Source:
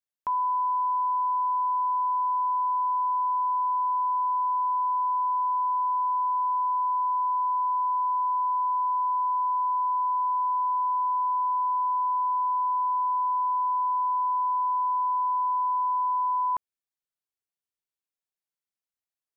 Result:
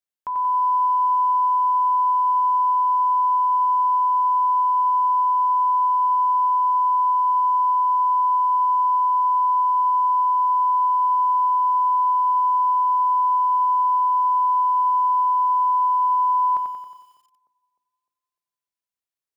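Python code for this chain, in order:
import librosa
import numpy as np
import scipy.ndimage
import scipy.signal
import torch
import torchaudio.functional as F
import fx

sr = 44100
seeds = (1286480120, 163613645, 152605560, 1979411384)

p1 = fx.hum_notches(x, sr, base_hz=60, count=6)
p2 = p1 + fx.echo_tape(p1, sr, ms=302, feedback_pct=55, wet_db=-19, lp_hz=1000.0, drive_db=18.0, wow_cents=31, dry=0)
y = fx.echo_crushed(p2, sr, ms=91, feedback_pct=55, bits=10, wet_db=-5.0)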